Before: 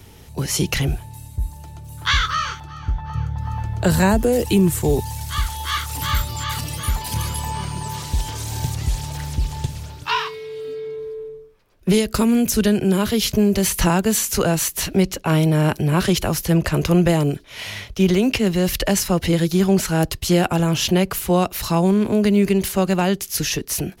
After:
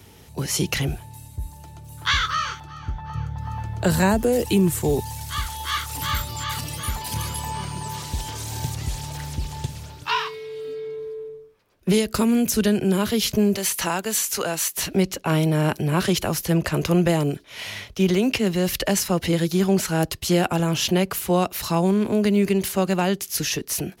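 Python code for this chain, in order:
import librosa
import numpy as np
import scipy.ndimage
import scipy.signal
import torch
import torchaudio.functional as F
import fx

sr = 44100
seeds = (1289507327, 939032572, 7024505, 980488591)

y = fx.highpass(x, sr, hz=fx.steps((0.0, 92.0), (13.56, 680.0), (14.77, 120.0)), slope=6)
y = y * librosa.db_to_amplitude(-2.0)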